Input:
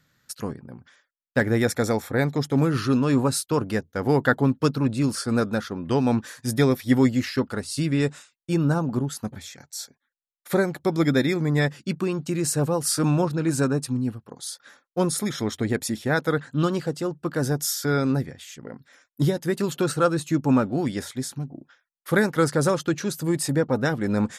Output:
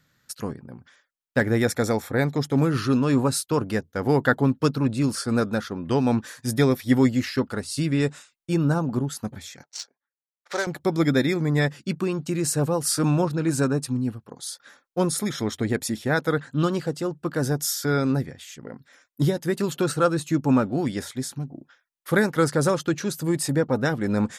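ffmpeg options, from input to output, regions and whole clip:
-filter_complex "[0:a]asettb=1/sr,asplit=3[a][b][c];[a]atrim=end=9.634[d];[b]atrim=start=9.63:end=10.67,asetpts=PTS-STARTPTS,afade=t=in:d=0.004:c=qsin,afade=t=out:st=1.036:d=0.004:c=qsin,adynamicsmooth=sensitivity=6.5:basefreq=920,highpass=640,equalizer=f=5.8k:w=1.1:g=13.5[e];[c]atrim=start=10.666[f];[d][e]acrossfade=d=0.004:c1=hsin:c2=qsin[g];[g][f]acrossfade=d=0.004:c1=qsin:c2=hsin"

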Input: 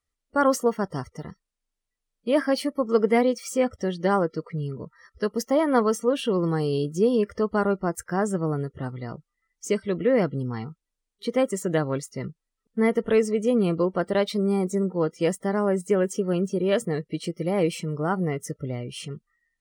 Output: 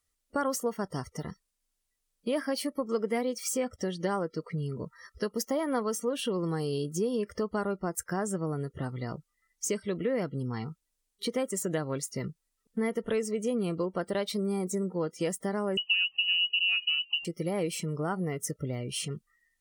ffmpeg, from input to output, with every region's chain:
-filter_complex "[0:a]asettb=1/sr,asplit=3[a][b][c];[a]atrim=end=15.774[d];[b]atrim=start=15.77:end=17.25,asetpts=PTS-STARTPTS,afade=t=in:d=0.004:c=qsin,afade=t=out:st=1.476:d=0.004:c=qsin,tiltshelf=f=670:g=9.5,bandreject=f=319:t=h:w=4,bandreject=f=638:t=h:w=4,lowpass=f=2.6k:t=q:w=0.5098,lowpass=f=2.6k:t=q:w=0.6013,lowpass=f=2.6k:t=q:w=0.9,lowpass=f=2.6k:t=q:w=2.563,afreqshift=-3100[e];[c]atrim=start=17.246[f];[d][e]acrossfade=d=0.004:c1=hsin:c2=qsin[g];[g][f]acrossfade=d=0.004:c1=qsin:c2=hsin,aemphasis=mode=production:type=cd,acompressor=threshold=-32dB:ratio=2.5,volume=1dB"

